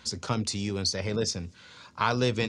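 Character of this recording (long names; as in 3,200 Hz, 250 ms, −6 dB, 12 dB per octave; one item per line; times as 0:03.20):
background noise floor −54 dBFS
spectral slope −4.0 dB per octave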